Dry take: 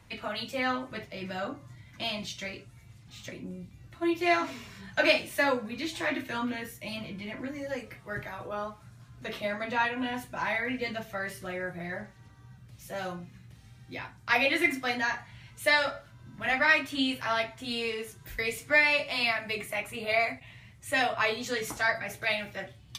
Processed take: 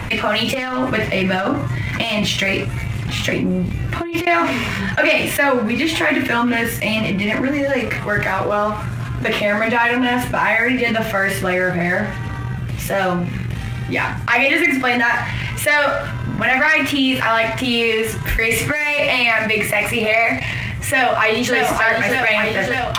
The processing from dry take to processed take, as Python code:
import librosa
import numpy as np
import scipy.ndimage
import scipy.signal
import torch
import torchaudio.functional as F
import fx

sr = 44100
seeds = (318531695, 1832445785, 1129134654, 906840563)

y = fx.over_compress(x, sr, threshold_db=-37.0, ratio=-0.5, at=(0.46, 4.27))
y = fx.over_compress(y, sr, threshold_db=-35.0, ratio=-1.0, at=(18.28, 19.21))
y = fx.echo_throw(y, sr, start_s=20.93, length_s=0.63, ms=590, feedback_pct=55, wet_db=-6.0)
y = fx.high_shelf_res(y, sr, hz=3400.0, db=-7.0, q=1.5)
y = fx.leveller(y, sr, passes=1)
y = fx.env_flatten(y, sr, amount_pct=70)
y = y * librosa.db_to_amplitude(2.5)